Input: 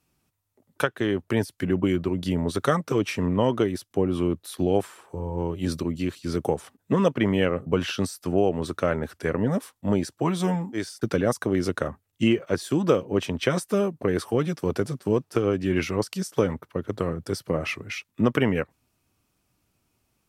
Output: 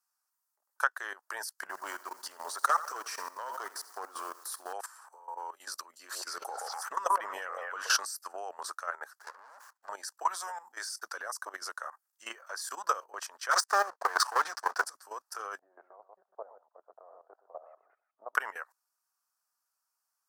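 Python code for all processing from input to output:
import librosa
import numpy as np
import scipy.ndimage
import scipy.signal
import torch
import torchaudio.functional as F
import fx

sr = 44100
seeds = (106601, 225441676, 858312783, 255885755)

y = fx.chain(x, sr, fx.low_shelf(hz=360.0, db=5.5),
    fx.clip_hard(threshold_db=-11.5),
    fx.echo_crushed(ms=82, feedback_pct=55, bits=7, wet_db=-12), at=(1.61, 4.73))
y = fx.chain(y, sr, fx.low_shelf(hz=310.0, db=6.5),
    fx.echo_stepped(ms=124, hz=620.0, octaves=1.4, feedback_pct=70, wet_db=-2.5),
    fx.sustainer(db_per_s=40.0), at=(5.99, 8.0))
y = fx.chain(y, sr, fx.low_shelf(hz=97.0, db=-11.5),
    fx.tube_stage(drive_db=31.0, bias=0.3),
    fx.running_max(window=9), at=(9.19, 9.89))
y = fx.chain(y, sr, fx.lowpass(hz=5600.0, slope=12),
    fx.leveller(passes=3), at=(13.51, 14.85))
y = fx.chain(y, sr, fx.ladder_lowpass(hz=740.0, resonance_pct=70),
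    fx.echo_single(ms=123, db=-9.5), at=(15.59, 18.35))
y = scipy.signal.sosfilt(scipy.signal.butter(4, 930.0, 'highpass', fs=sr, output='sos'), y)
y = fx.band_shelf(y, sr, hz=2800.0, db=-16.0, octaves=1.1)
y = fx.level_steps(y, sr, step_db=15)
y = F.gain(torch.from_numpy(y), 6.0).numpy()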